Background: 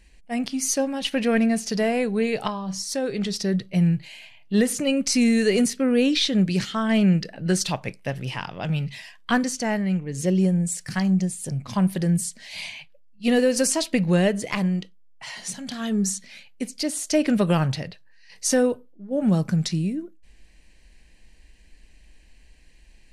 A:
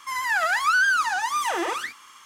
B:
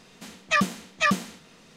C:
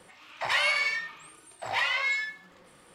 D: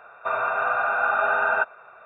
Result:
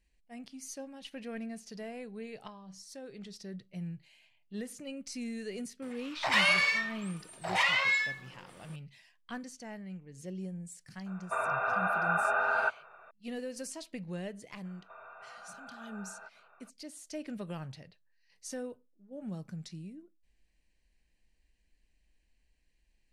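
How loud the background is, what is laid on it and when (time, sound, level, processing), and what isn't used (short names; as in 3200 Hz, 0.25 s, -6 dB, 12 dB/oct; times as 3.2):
background -20 dB
5.82 add C
11.06 add D -7 dB
14.65 add D -14.5 dB + compressor 2.5:1, threshold -39 dBFS
not used: A, B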